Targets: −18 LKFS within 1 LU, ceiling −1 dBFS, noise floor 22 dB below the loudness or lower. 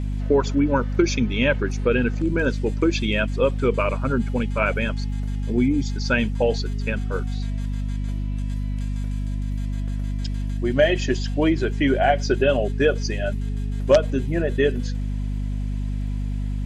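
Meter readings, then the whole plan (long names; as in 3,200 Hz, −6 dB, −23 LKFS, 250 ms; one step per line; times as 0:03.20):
crackle rate 43 per second; mains hum 50 Hz; hum harmonics up to 250 Hz; level of the hum −23 dBFS; integrated loudness −23.5 LKFS; sample peak −5.5 dBFS; target loudness −18.0 LKFS
→ click removal
mains-hum notches 50/100/150/200/250 Hz
level +5.5 dB
brickwall limiter −1 dBFS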